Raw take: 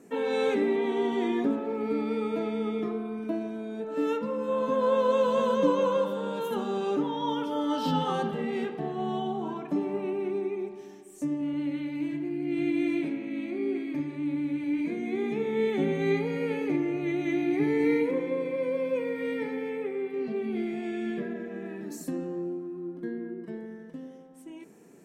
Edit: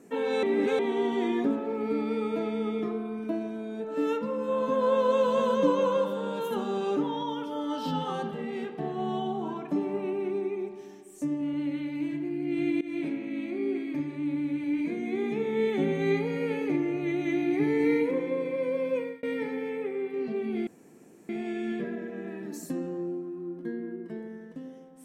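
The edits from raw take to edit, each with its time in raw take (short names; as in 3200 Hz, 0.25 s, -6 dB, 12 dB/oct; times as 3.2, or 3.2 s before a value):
0.43–0.79 reverse
7.23–8.78 gain -3.5 dB
12.81–13.07 fade in, from -19 dB
18.98–19.23 fade out
20.67 insert room tone 0.62 s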